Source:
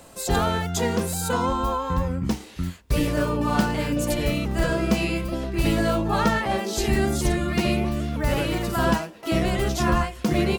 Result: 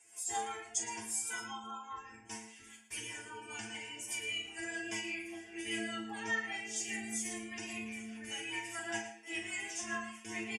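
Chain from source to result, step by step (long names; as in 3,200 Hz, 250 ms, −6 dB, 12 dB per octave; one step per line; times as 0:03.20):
sub-octave generator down 1 octave, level −1 dB
meter weighting curve ITU-R 468
gate on every frequency bin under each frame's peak −25 dB strong
phaser with its sweep stopped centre 830 Hz, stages 8
stiff-string resonator 110 Hz, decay 0.51 s, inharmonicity 0.002
rotating-speaker cabinet horn 5 Hz
double-tracking delay 41 ms −8.5 dB
single-tap delay 113 ms −12 dB
level +1 dB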